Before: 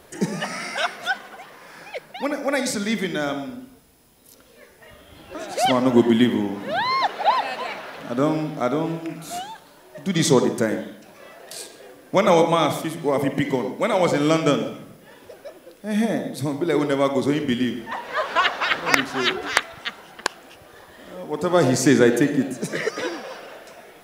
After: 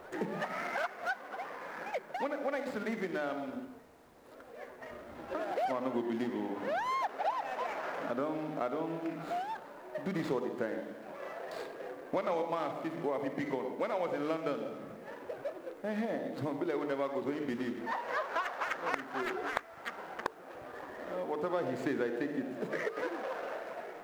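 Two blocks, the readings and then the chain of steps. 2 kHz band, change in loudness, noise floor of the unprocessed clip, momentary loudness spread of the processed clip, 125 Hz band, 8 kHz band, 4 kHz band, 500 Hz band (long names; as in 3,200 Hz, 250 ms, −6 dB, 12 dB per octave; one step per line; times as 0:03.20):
−13.0 dB, −14.5 dB, −50 dBFS, 10 LU, −18.5 dB, below −25 dB, −21.5 dB, −12.5 dB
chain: running median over 15 samples
bass and treble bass −11 dB, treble −11 dB
mains-hum notches 50/100/150/200/250/300/350/400/450 Hz
downward compressor 4 to 1, threshold −37 dBFS, peak gain reduction 20 dB
bit reduction 12 bits
on a send: backwards echo 1,033 ms −22 dB
on the sum: level +3 dB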